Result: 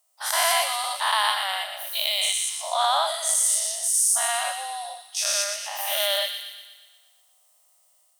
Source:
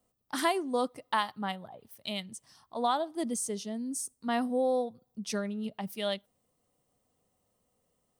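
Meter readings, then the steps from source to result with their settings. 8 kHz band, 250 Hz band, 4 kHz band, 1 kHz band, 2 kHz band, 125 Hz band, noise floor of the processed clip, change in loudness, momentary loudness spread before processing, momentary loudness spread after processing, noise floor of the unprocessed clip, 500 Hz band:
+18.5 dB, under -40 dB, +16.0 dB, +7.5 dB, +11.5 dB, n/a, -62 dBFS, +10.5 dB, 13 LU, 11 LU, -77 dBFS, +0.5 dB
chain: spectral dilation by 0.24 s; bell 14000 Hz +12 dB 2.5 oct; AGC gain up to 4.5 dB; brick-wall FIR high-pass 550 Hz; on a send: thin delay 0.12 s, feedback 56%, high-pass 1800 Hz, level -6 dB; on the sum: gain -3.5 dB

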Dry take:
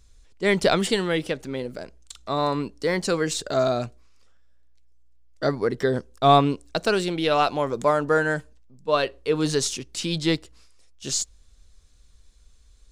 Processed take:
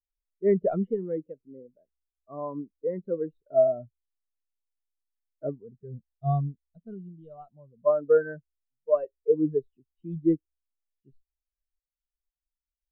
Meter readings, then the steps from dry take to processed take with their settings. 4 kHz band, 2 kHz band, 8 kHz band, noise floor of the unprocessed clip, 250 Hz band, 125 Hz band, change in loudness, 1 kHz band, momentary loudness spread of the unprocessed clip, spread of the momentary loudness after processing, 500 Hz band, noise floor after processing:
under -40 dB, -19.5 dB, under -40 dB, -55 dBFS, -5.0 dB, -4.5 dB, -4.0 dB, -14.0 dB, 11 LU, 21 LU, -3.0 dB, under -85 dBFS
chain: spectral gain 5.62–7.86, 240–2800 Hz -9 dB; air absorption 490 m; spectral expander 2.5:1; gain -2 dB

